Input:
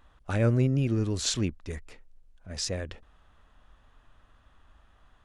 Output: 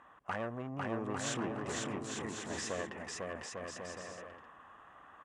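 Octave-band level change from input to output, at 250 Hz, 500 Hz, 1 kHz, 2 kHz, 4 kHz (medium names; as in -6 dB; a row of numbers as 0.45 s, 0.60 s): -9.0 dB, -5.5 dB, +4.5 dB, +0.5 dB, -9.0 dB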